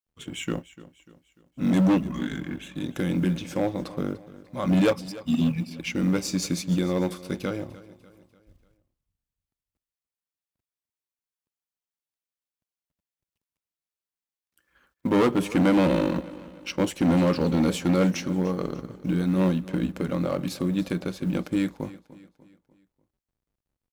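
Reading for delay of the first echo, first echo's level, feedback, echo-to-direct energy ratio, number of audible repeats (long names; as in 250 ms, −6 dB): 296 ms, −18.0 dB, 45%, −17.0 dB, 3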